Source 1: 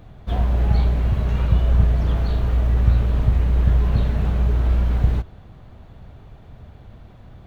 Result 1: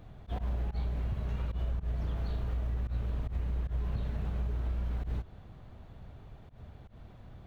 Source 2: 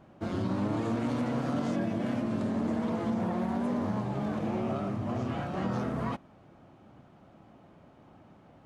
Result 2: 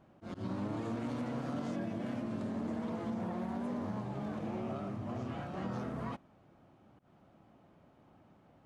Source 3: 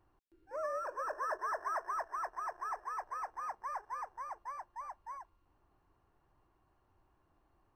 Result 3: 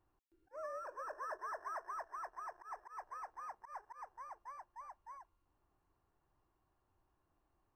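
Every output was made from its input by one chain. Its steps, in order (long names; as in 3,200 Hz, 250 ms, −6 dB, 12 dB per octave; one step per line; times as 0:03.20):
volume swells 101 ms
downward compressor, threshold −23 dBFS
level −7 dB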